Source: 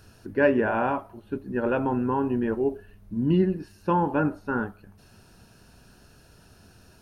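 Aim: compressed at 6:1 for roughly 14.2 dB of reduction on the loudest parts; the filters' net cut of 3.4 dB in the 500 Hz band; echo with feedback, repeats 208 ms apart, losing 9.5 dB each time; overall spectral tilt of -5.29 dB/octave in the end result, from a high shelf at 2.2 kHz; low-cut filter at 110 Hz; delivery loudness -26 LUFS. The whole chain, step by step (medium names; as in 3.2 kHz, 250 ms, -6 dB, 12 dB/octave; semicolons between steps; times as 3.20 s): high-pass 110 Hz; peaking EQ 500 Hz -5 dB; treble shelf 2.2 kHz +8.5 dB; compression 6:1, threshold -34 dBFS; feedback delay 208 ms, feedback 33%, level -9.5 dB; trim +12 dB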